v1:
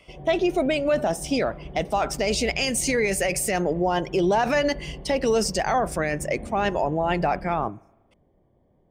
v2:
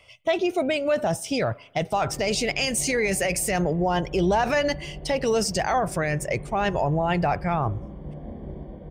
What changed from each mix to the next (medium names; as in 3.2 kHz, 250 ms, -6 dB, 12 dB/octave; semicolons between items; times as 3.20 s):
speech: add resonant low shelf 160 Hz +12.5 dB, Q 1.5; background: entry +1.85 s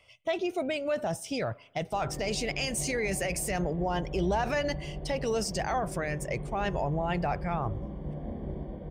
speech -7.0 dB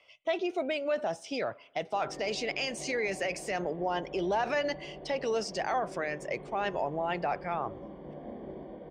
master: add three-band isolator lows -20 dB, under 230 Hz, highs -22 dB, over 6.3 kHz